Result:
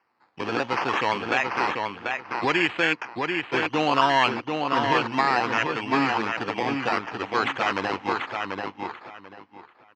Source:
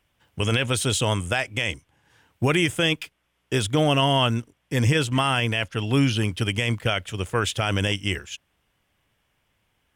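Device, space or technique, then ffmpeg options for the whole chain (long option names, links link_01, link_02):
circuit-bent sampling toy: -filter_complex "[0:a]acrusher=samples=12:mix=1:aa=0.000001:lfo=1:lforange=7.2:lforate=0.64,highpass=420,equalizer=frequency=430:width_type=q:width=4:gain=-5,equalizer=frequency=610:width_type=q:width=4:gain=-9,equalizer=frequency=880:width_type=q:width=4:gain=3,equalizer=frequency=1500:width_type=q:width=4:gain=-3,equalizer=frequency=2100:width_type=q:width=4:gain=-3,equalizer=frequency=3600:width_type=q:width=4:gain=-9,lowpass=frequency=4100:width=0.5412,lowpass=frequency=4100:width=1.3066,asplit=2[link_01][link_02];[link_02]adelay=739,lowpass=frequency=4400:poles=1,volume=-4dB,asplit=2[link_03][link_04];[link_04]adelay=739,lowpass=frequency=4400:poles=1,volume=0.22,asplit=2[link_05][link_06];[link_06]adelay=739,lowpass=frequency=4400:poles=1,volume=0.22[link_07];[link_01][link_03][link_05][link_07]amix=inputs=4:normalize=0,volume=4.5dB"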